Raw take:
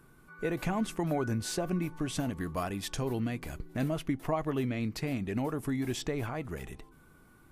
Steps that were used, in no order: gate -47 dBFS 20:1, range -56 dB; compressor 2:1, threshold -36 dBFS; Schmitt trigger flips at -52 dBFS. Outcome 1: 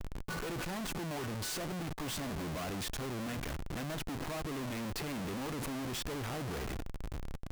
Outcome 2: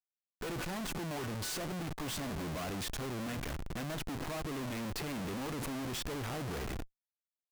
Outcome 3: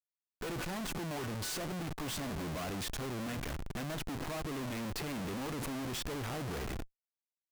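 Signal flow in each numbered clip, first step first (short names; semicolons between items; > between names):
compressor > Schmitt trigger > gate; gate > compressor > Schmitt trigger; compressor > gate > Schmitt trigger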